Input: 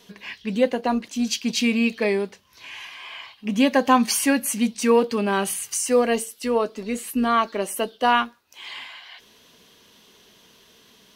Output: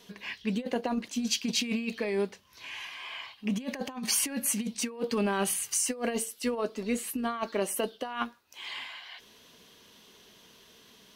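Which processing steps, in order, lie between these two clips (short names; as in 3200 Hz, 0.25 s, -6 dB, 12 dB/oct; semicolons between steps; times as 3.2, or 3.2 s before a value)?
negative-ratio compressor -23 dBFS, ratio -0.5; gain -6 dB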